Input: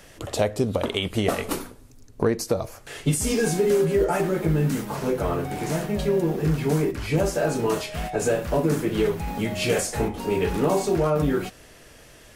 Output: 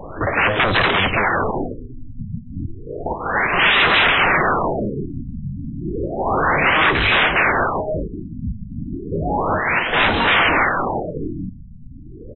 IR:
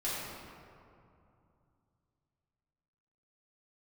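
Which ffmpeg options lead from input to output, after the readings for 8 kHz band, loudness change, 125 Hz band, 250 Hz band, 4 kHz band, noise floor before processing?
below −40 dB, +7.5 dB, −0.5 dB, −0.5 dB, +12.5 dB, −49 dBFS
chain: -filter_complex "[0:a]aeval=exprs='0.316*sin(PI/2*10*val(0)/0.316)':channel_layout=same,asplit=2[link_01][link_02];[link_02]adelay=140,highpass=300,lowpass=3400,asoftclip=type=hard:threshold=-19dB,volume=-10dB[link_03];[link_01][link_03]amix=inputs=2:normalize=0,acrossover=split=3000[link_04][link_05];[link_05]acompressor=threshold=-30dB:ratio=4:attack=1:release=60[link_06];[link_04][link_06]amix=inputs=2:normalize=0,tiltshelf=frequency=1200:gain=-7,asplit=2[link_07][link_08];[1:a]atrim=start_sample=2205,atrim=end_sample=3969[link_09];[link_08][link_09]afir=irnorm=-1:irlink=0,volume=-15.5dB[link_10];[link_07][link_10]amix=inputs=2:normalize=0,afftfilt=real='re*lt(b*sr/1024,250*pow(4100/250,0.5+0.5*sin(2*PI*0.32*pts/sr)))':imag='im*lt(b*sr/1024,250*pow(4100/250,0.5+0.5*sin(2*PI*0.32*pts/sr)))':win_size=1024:overlap=0.75,volume=-1.5dB"

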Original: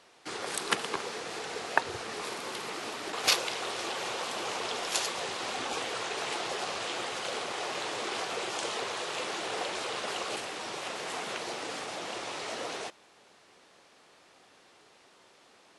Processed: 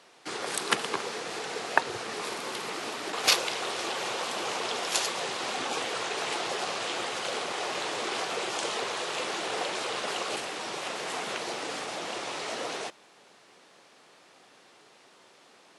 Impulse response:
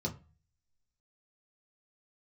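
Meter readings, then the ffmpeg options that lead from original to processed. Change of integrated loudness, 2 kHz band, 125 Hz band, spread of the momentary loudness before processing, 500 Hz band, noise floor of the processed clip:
+2.5 dB, +2.5 dB, +1.5 dB, 6 LU, +2.5 dB, −58 dBFS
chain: -af "highpass=frequency=110:width=0.5412,highpass=frequency=110:width=1.3066,volume=2.5dB"

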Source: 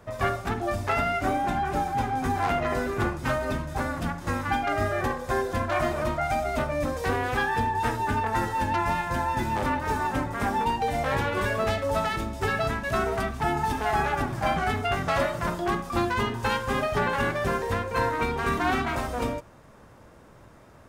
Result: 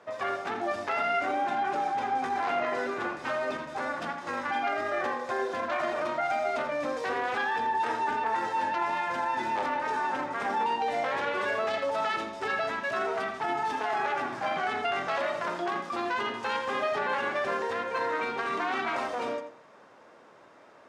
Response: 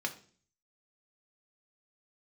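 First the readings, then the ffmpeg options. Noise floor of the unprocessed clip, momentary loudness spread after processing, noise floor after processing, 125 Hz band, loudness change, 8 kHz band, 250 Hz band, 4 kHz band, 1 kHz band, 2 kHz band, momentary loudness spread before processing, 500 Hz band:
−51 dBFS, 3 LU, −54 dBFS, −21.0 dB, −3.0 dB, −8.5 dB, −8.5 dB, −2.5 dB, −2.0 dB, −2.0 dB, 3 LU, −3.0 dB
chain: -filter_complex "[0:a]alimiter=limit=-20.5dB:level=0:latency=1:release=12,highpass=380,lowpass=5300,asplit=2[link_01][link_02];[1:a]atrim=start_sample=2205,adelay=82[link_03];[link_02][link_03]afir=irnorm=-1:irlink=0,volume=-12dB[link_04];[link_01][link_04]amix=inputs=2:normalize=0"

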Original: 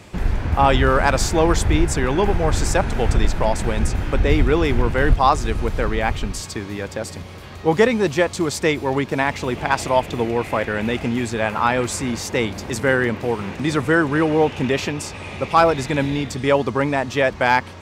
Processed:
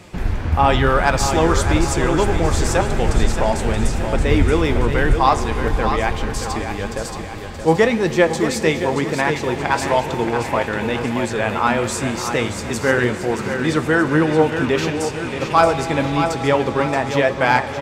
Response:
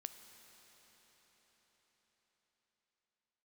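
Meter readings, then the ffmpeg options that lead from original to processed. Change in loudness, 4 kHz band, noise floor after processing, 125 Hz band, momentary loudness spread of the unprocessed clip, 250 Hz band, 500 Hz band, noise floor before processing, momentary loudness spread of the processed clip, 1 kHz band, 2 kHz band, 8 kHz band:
+1.5 dB, +1.5 dB, −28 dBFS, +1.0 dB, 8 LU, +1.5 dB, +1.5 dB, −36 dBFS, 7 LU, +1.5 dB, +1.5 dB, +1.5 dB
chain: -filter_complex "[0:a]aecho=1:1:626|1252|1878|2504|3130:0.398|0.179|0.0806|0.0363|0.0163,asplit=2[link_01][link_02];[1:a]atrim=start_sample=2205[link_03];[link_02][link_03]afir=irnorm=-1:irlink=0,volume=11dB[link_04];[link_01][link_04]amix=inputs=2:normalize=0,flanger=delay=5.5:depth=7.1:regen=66:speed=0.98:shape=sinusoidal,volume=-5dB"

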